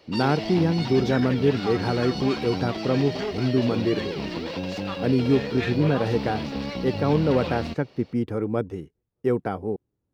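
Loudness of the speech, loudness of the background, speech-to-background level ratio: -25.0 LUFS, -30.5 LUFS, 5.5 dB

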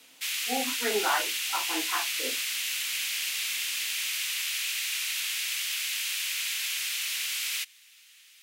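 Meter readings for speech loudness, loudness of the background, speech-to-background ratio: -33.0 LUFS, -28.5 LUFS, -4.5 dB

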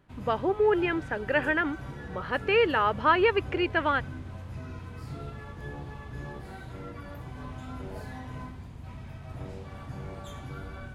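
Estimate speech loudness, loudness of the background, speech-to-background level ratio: -26.0 LUFS, -41.0 LUFS, 15.0 dB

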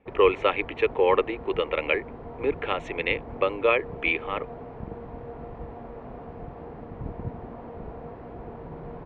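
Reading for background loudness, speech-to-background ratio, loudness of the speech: -40.0 LUFS, 14.0 dB, -26.0 LUFS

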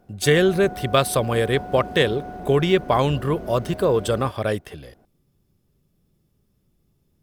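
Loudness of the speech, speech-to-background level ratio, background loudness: -21.0 LUFS, 14.5 dB, -35.5 LUFS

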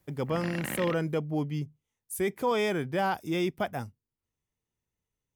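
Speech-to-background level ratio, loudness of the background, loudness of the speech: 8.0 dB, -38.5 LUFS, -30.5 LUFS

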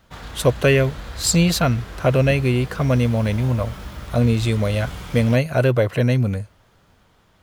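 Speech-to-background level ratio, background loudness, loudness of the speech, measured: 15.5 dB, -35.0 LUFS, -19.5 LUFS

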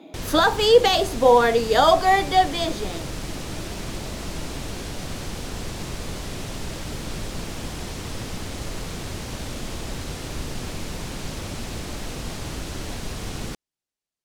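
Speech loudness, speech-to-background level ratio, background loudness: -18.5 LUFS, 14.0 dB, -32.5 LUFS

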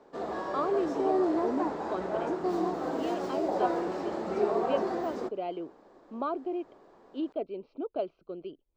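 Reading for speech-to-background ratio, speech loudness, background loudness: -4.5 dB, -36.0 LUFS, -31.5 LUFS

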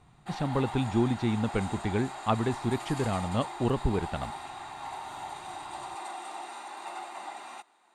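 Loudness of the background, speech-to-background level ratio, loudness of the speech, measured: -40.0 LUFS, 9.5 dB, -30.5 LUFS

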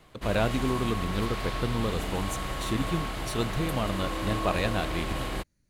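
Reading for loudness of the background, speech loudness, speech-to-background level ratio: -33.5 LUFS, -31.5 LUFS, 2.0 dB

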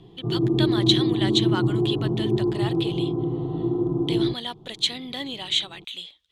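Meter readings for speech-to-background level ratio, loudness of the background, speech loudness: -4.5 dB, -24.0 LUFS, -28.5 LUFS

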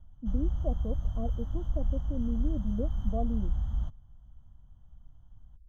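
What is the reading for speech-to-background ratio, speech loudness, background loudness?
-3.0 dB, -37.5 LUFS, -34.5 LUFS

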